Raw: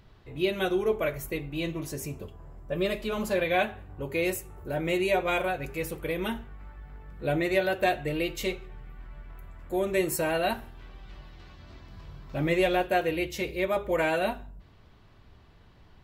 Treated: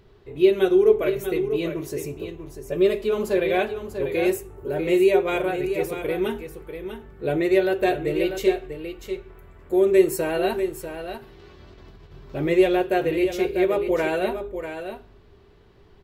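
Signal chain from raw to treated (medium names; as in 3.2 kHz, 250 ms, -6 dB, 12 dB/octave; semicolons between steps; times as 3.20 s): peaking EQ 400 Hz +14.5 dB 0.38 oct; 11.17–12.12 s: compressor with a negative ratio -46 dBFS, ratio -0.5; delay 643 ms -9 dB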